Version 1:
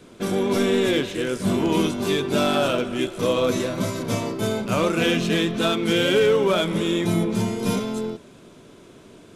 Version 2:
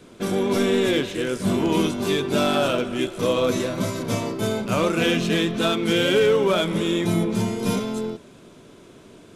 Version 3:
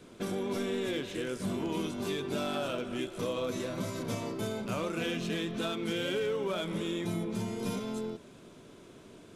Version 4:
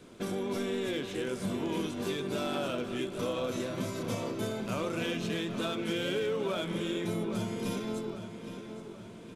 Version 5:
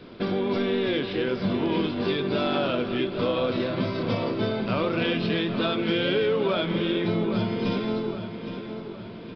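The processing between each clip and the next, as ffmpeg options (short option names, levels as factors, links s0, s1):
-af anull
-af "acompressor=threshold=0.0398:ratio=2.5,volume=0.531"
-filter_complex "[0:a]asplit=2[s0][s1];[s1]adelay=815,lowpass=f=4600:p=1,volume=0.335,asplit=2[s2][s3];[s3]adelay=815,lowpass=f=4600:p=1,volume=0.52,asplit=2[s4][s5];[s5]adelay=815,lowpass=f=4600:p=1,volume=0.52,asplit=2[s6][s7];[s7]adelay=815,lowpass=f=4600:p=1,volume=0.52,asplit=2[s8][s9];[s9]adelay=815,lowpass=f=4600:p=1,volume=0.52,asplit=2[s10][s11];[s11]adelay=815,lowpass=f=4600:p=1,volume=0.52[s12];[s0][s2][s4][s6][s8][s10][s12]amix=inputs=7:normalize=0"
-af "aresample=11025,aresample=44100,volume=2.51"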